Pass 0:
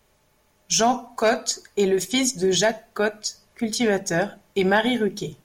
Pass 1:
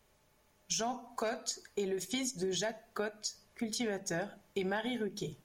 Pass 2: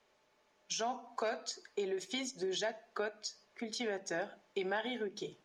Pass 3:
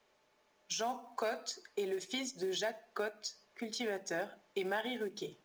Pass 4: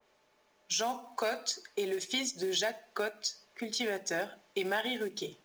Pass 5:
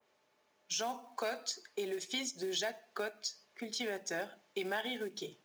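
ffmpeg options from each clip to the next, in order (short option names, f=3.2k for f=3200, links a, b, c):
-af "acompressor=threshold=-27dB:ratio=4,volume=-6.5dB"
-filter_complex "[0:a]acrossover=split=250 6400:gain=0.126 1 0.0708[a][b][c];[a][b][c]amix=inputs=3:normalize=0"
-af "acrusher=bits=6:mode=log:mix=0:aa=0.000001"
-af "adynamicequalizer=threshold=0.00355:dfrequency=1900:dqfactor=0.7:tfrequency=1900:tqfactor=0.7:attack=5:release=100:ratio=0.375:range=2.5:mode=boostabove:tftype=highshelf,volume=3dB"
-af "highpass=84,volume=-4.5dB"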